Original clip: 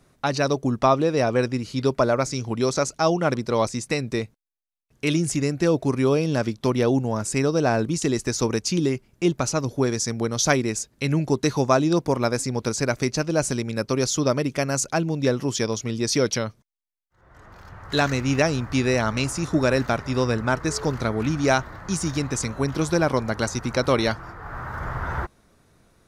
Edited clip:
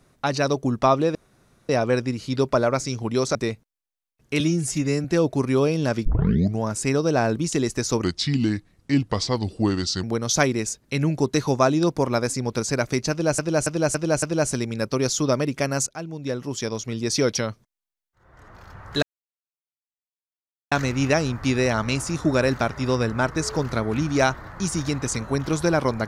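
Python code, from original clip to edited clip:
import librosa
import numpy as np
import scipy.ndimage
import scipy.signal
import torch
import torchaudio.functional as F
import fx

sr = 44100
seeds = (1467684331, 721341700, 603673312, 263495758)

y = fx.edit(x, sr, fx.insert_room_tone(at_s=1.15, length_s=0.54),
    fx.cut(start_s=2.81, length_s=1.25),
    fx.stretch_span(start_s=5.11, length_s=0.43, factor=1.5),
    fx.tape_start(start_s=6.55, length_s=0.55),
    fx.speed_span(start_s=8.53, length_s=1.6, speed=0.8),
    fx.repeat(start_s=13.2, length_s=0.28, count=5),
    fx.fade_in_from(start_s=14.84, length_s=1.34, floor_db=-13.0),
    fx.insert_silence(at_s=18.0, length_s=1.69), tone=tone)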